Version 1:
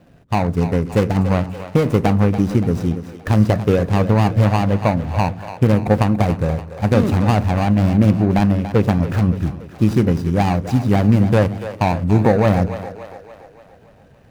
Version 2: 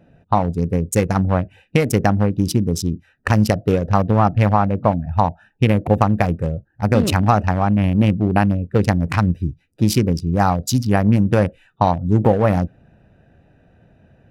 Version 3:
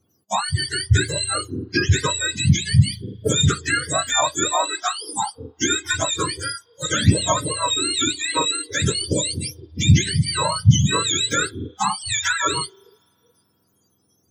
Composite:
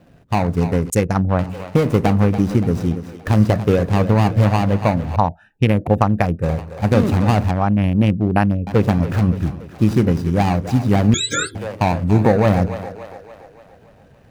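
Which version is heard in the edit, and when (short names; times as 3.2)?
1
0.9–1.39 from 2
5.16–6.43 from 2
7.51–8.67 from 2
11.14–11.55 from 3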